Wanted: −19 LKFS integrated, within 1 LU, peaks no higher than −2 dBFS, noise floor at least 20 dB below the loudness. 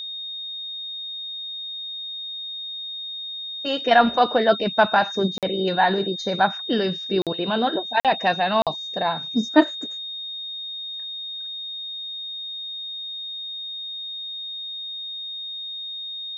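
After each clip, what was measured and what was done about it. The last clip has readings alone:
number of dropouts 4; longest dropout 47 ms; interfering tone 3,700 Hz; level of the tone −30 dBFS; integrated loudness −24.5 LKFS; sample peak −3.0 dBFS; target loudness −19.0 LKFS
→ repair the gap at 0:05.38/0:07.22/0:08.00/0:08.62, 47 ms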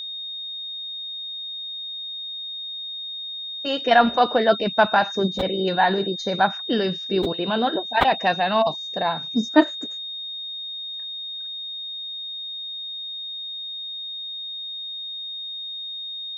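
number of dropouts 0; interfering tone 3,700 Hz; level of the tone −30 dBFS
→ notch filter 3,700 Hz, Q 30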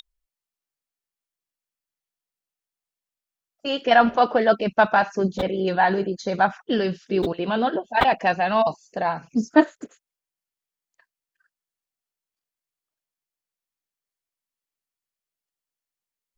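interfering tone none found; integrated loudness −21.5 LKFS; sample peak −2.5 dBFS; target loudness −19.0 LKFS
→ level +2.5 dB
brickwall limiter −2 dBFS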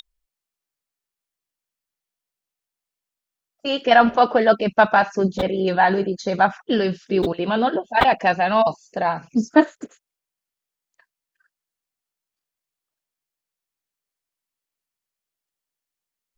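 integrated loudness −19.5 LKFS; sample peak −2.0 dBFS; background noise floor −87 dBFS

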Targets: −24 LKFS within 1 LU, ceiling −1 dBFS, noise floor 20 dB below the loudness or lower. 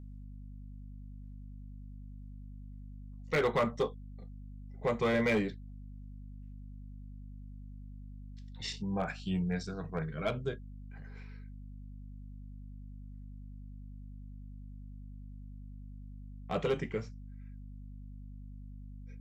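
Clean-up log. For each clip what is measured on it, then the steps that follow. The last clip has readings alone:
share of clipped samples 0.3%; peaks flattened at −23.0 dBFS; mains hum 50 Hz; hum harmonics up to 250 Hz; level of the hum −44 dBFS; integrated loudness −34.0 LKFS; sample peak −23.0 dBFS; target loudness −24.0 LKFS
→ clipped peaks rebuilt −23 dBFS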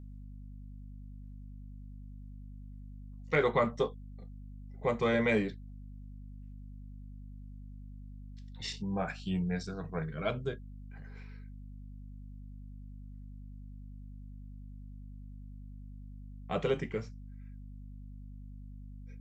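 share of clipped samples 0.0%; mains hum 50 Hz; hum harmonics up to 250 Hz; level of the hum −44 dBFS
→ mains-hum notches 50/100/150/200/250 Hz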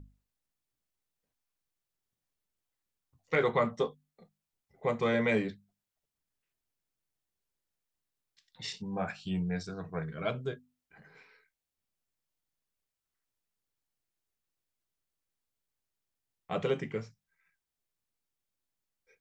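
mains hum none found; integrated loudness −33.5 LKFS; sample peak −15.5 dBFS; target loudness −24.0 LKFS
→ level +9.5 dB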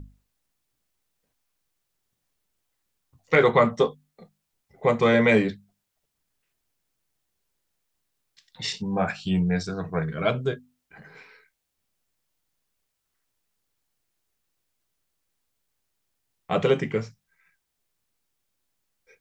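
integrated loudness −24.0 LKFS; sample peak −6.0 dBFS; background noise floor −80 dBFS

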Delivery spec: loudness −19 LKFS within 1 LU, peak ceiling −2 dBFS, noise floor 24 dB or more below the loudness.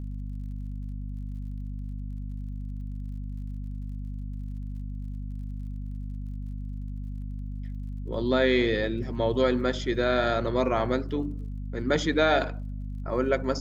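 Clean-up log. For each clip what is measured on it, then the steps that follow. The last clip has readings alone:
crackle rate 48 per second; mains hum 50 Hz; hum harmonics up to 250 Hz; level of the hum −32 dBFS; integrated loudness −30.0 LKFS; sample peak −10.0 dBFS; target loudness −19.0 LKFS
→ click removal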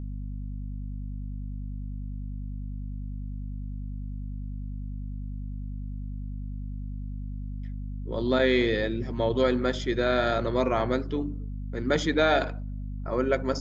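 crackle rate 0 per second; mains hum 50 Hz; hum harmonics up to 250 Hz; level of the hum −32 dBFS
→ hum removal 50 Hz, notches 5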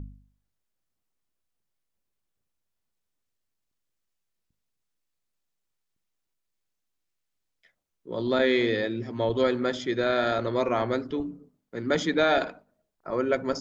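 mains hum none found; integrated loudness −26.5 LKFS; sample peak −10.5 dBFS; target loudness −19.0 LKFS
→ level +7.5 dB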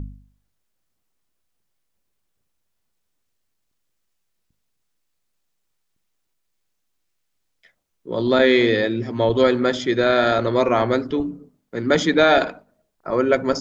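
integrated loudness −19.0 LKFS; sample peak −3.0 dBFS; background noise floor −73 dBFS

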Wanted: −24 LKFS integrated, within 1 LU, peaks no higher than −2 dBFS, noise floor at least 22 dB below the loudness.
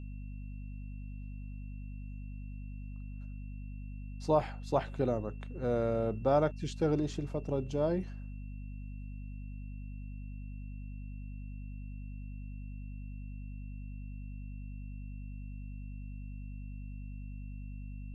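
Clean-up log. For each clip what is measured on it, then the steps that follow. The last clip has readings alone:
mains hum 50 Hz; hum harmonics up to 250 Hz; level of the hum −40 dBFS; interfering tone 2,700 Hz; level of the tone −63 dBFS; integrated loudness −38.5 LKFS; sample peak −14.5 dBFS; target loudness −24.0 LKFS
→ hum removal 50 Hz, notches 5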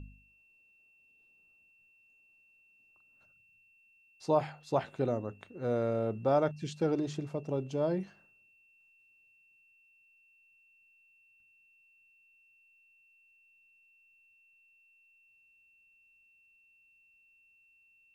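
mains hum none found; interfering tone 2,700 Hz; level of the tone −63 dBFS
→ notch filter 2,700 Hz, Q 30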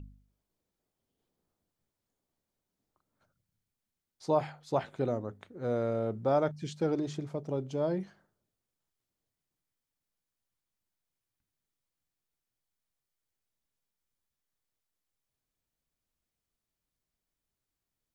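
interfering tone none found; integrated loudness −33.0 LKFS; sample peak −15.0 dBFS; target loudness −24.0 LKFS
→ level +9 dB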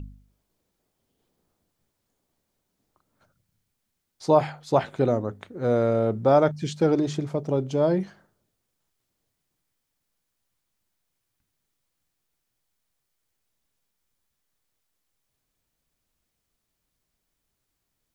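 integrated loudness −24.0 LKFS; sample peak −6.0 dBFS; background noise floor −80 dBFS

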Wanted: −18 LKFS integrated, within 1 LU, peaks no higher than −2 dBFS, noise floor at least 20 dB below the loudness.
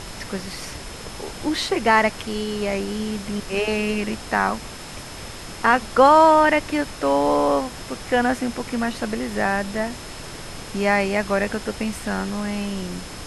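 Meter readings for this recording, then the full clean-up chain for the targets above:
interfering tone 5,200 Hz; level of the tone −45 dBFS; background noise floor −36 dBFS; target noise floor −42 dBFS; integrated loudness −21.5 LKFS; sample peak −3.5 dBFS; target loudness −18.0 LKFS
→ notch filter 5,200 Hz, Q 30
noise reduction from a noise print 6 dB
level +3.5 dB
brickwall limiter −2 dBFS

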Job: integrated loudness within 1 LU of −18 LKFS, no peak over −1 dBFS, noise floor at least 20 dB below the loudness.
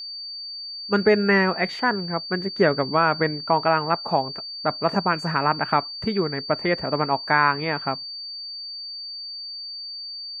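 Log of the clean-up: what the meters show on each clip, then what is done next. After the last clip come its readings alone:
interfering tone 4,600 Hz; level of the tone −32 dBFS; integrated loudness −23.5 LKFS; sample peak −4.0 dBFS; target loudness −18.0 LKFS
→ notch filter 4,600 Hz, Q 30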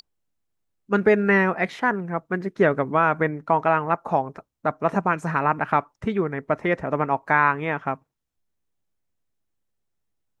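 interfering tone none found; integrated loudness −23.0 LKFS; sample peak −4.0 dBFS; target loudness −18.0 LKFS
→ level +5 dB
brickwall limiter −1 dBFS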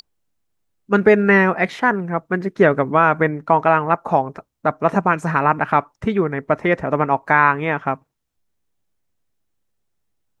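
integrated loudness −18.0 LKFS; sample peak −1.0 dBFS; background noise floor −74 dBFS

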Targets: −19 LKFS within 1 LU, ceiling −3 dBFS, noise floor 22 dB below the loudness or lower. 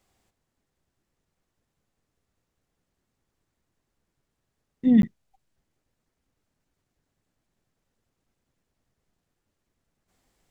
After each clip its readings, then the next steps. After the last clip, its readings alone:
number of dropouts 1; longest dropout 12 ms; integrated loudness −22.0 LKFS; sample peak −9.0 dBFS; target loudness −19.0 LKFS
→ repair the gap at 0:05.02, 12 ms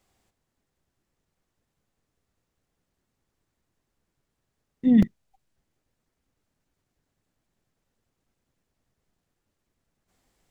number of dropouts 0; integrated loudness −22.0 LKFS; sample peak −8.5 dBFS; target loudness −19.0 LKFS
→ level +3 dB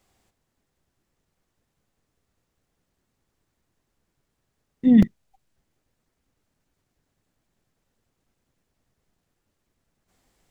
integrated loudness −19.0 LKFS; sample peak −5.5 dBFS; background noise floor −78 dBFS

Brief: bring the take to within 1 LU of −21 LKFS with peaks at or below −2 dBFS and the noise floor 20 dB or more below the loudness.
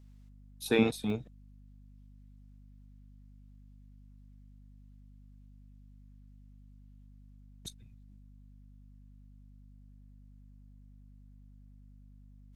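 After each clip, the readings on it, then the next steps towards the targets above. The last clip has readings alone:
number of dropouts 1; longest dropout 2.3 ms; mains hum 50 Hz; hum harmonics up to 250 Hz; level of the hum −52 dBFS; integrated loudness −32.5 LKFS; sample peak −12.0 dBFS; target loudness −21.0 LKFS
→ repair the gap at 0:01.10, 2.3 ms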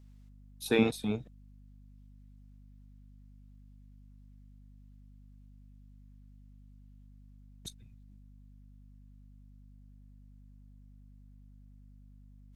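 number of dropouts 0; mains hum 50 Hz; hum harmonics up to 250 Hz; level of the hum −52 dBFS
→ hum removal 50 Hz, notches 5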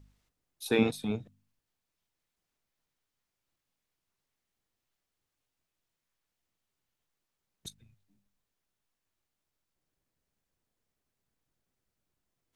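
mains hum none found; integrated loudness −30.5 LKFS; sample peak −12.0 dBFS; target loudness −21.0 LKFS
→ level +9.5 dB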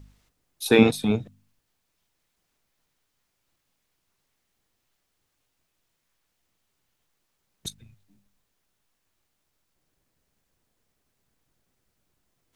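integrated loudness −21.5 LKFS; sample peak −2.5 dBFS; background noise floor −77 dBFS

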